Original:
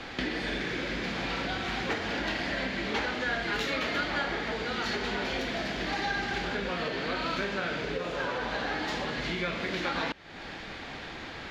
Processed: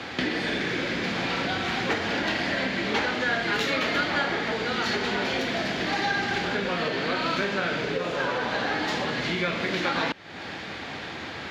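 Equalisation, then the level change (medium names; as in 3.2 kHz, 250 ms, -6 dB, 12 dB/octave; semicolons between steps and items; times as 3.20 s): high-pass 77 Hz 24 dB/octave; +5.0 dB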